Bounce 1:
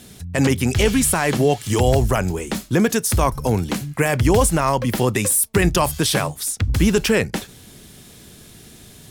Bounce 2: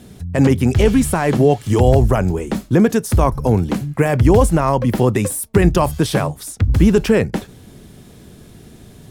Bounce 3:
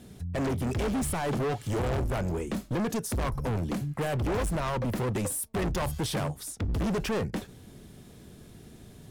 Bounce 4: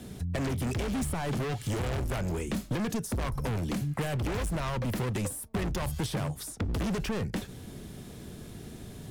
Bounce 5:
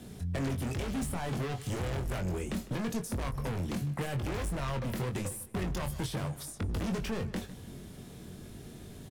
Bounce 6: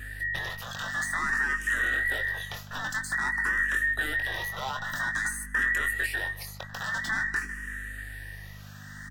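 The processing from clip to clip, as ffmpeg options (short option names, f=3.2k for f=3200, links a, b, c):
-af "tiltshelf=f=1.5k:g=6,volume=-1dB"
-af "asoftclip=type=hard:threshold=-18.5dB,volume=-8dB"
-filter_complex "[0:a]acrossover=split=200|1700[a][b][c];[a]acompressor=threshold=-37dB:ratio=4[d];[b]acompressor=threshold=-41dB:ratio=4[e];[c]acompressor=threshold=-45dB:ratio=4[f];[d][e][f]amix=inputs=3:normalize=0,volume=5.5dB"
-filter_complex "[0:a]asplit=2[a][b];[b]adelay=22,volume=-6.5dB[c];[a][c]amix=inputs=2:normalize=0,asplit=2[d][e];[e]adelay=154,lowpass=f=4.3k:p=1,volume=-16.5dB,asplit=2[f][g];[g]adelay=154,lowpass=f=4.3k:p=1,volume=0.37,asplit=2[h][i];[i]adelay=154,lowpass=f=4.3k:p=1,volume=0.37[j];[d][f][h][j]amix=inputs=4:normalize=0,volume=-4dB"
-filter_complex "[0:a]afftfilt=real='real(if(between(b,1,1012),(2*floor((b-1)/92)+1)*92-b,b),0)':imag='imag(if(between(b,1,1012),(2*floor((b-1)/92)+1)*92-b,b),0)*if(between(b,1,1012),-1,1)':win_size=2048:overlap=0.75,aeval=exprs='val(0)+0.00501*(sin(2*PI*50*n/s)+sin(2*PI*2*50*n/s)/2+sin(2*PI*3*50*n/s)/3+sin(2*PI*4*50*n/s)/4+sin(2*PI*5*50*n/s)/5)':c=same,asplit=2[a][b];[b]afreqshift=0.5[c];[a][c]amix=inputs=2:normalize=1,volume=7dB"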